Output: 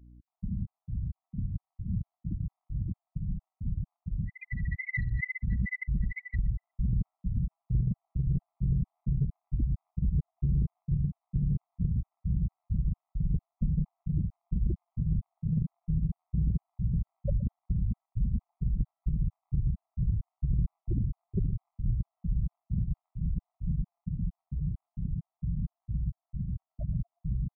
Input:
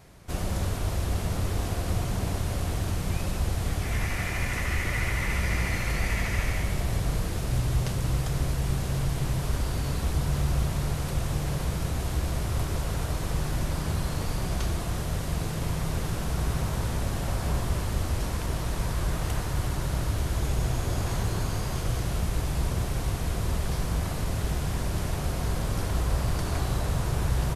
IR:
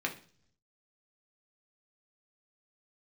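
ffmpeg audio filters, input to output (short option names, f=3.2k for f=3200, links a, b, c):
-filter_complex "[0:a]highpass=42,afftfilt=real='re*gte(hypot(re,im),0.141)':imag='im*gte(hypot(re,im),0.141)':win_size=1024:overlap=0.75,equalizer=f=76:t=o:w=1.2:g=-13.5,dynaudnorm=f=530:g=21:m=9.5dB,aeval=exprs='val(0)+0.00141*(sin(2*PI*60*n/s)+sin(2*PI*2*60*n/s)/2+sin(2*PI*3*60*n/s)/3+sin(2*PI*4*60*n/s)/4+sin(2*PI*5*60*n/s)/5)':c=same,adynamicequalizer=threshold=0.0112:dfrequency=130:dqfactor=1.4:tfrequency=130:tqfactor=1.4:attack=5:release=100:ratio=0.375:range=2:mode=cutabove:tftype=bell,asoftclip=type=tanh:threshold=-18.5dB,lowpass=2.2k,asplit=2[a][b];[b]adelay=120,lowpass=f=910:p=1,volume=-19dB,asplit=2[c][d];[d]adelay=120,lowpass=f=910:p=1,volume=0.51,asplit=2[e][f];[f]adelay=120,lowpass=f=910:p=1,volume=0.51,asplit=2[g][h];[h]adelay=120,lowpass=f=910:p=1,volume=0.51[i];[c][e][g][i]amix=inputs=4:normalize=0[j];[a][j]amix=inputs=2:normalize=0,acompressor=threshold=-30dB:ratio=3,afftfilt=real='re*gt(sin(2*PI*2.2*pts/sr)*(1-2*mod(floor(b*sr/1024/650),2)),0)':imag='im*gt(sin(2*PI*2.2*pts/sr)*(1-2*mod(floor(b*sr/1024/650),2)),0)':win_size=1024:overlap=0.75,volume=6dB"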